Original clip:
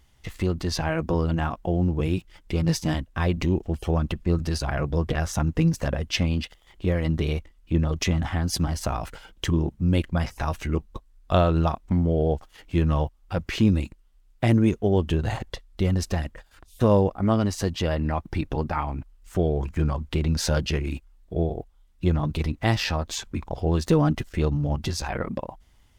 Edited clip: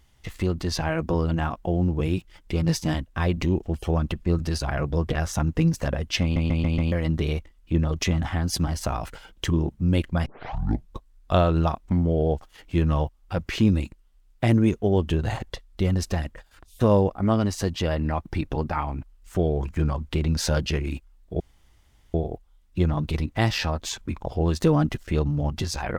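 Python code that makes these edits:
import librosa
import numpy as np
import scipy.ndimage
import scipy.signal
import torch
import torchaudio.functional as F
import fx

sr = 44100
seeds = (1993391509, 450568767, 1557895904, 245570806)

y = fx.edit(x, sr, fx.stutter_over(start_s=6.22, slice_s=0.14, count=5),
    fx.tape_start(start_s=10.26, length_s=0.67),
    fx.insert_room_tone(at_s=21.4, length_s=0.74), tone=tone)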